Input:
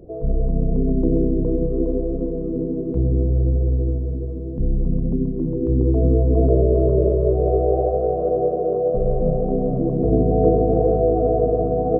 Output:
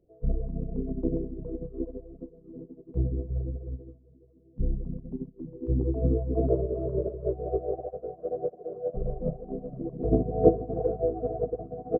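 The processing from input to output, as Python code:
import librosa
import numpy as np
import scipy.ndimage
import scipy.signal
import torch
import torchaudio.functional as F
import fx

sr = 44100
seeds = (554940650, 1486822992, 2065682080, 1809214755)

y = fx.dereverb_blind(x, sr, rt60_s=1.2)
y = fx.upward_expand(y, sr, threshold_db=-31.0, expansion=2.5)
y = y * librosa.db_to_amplitude(1.5)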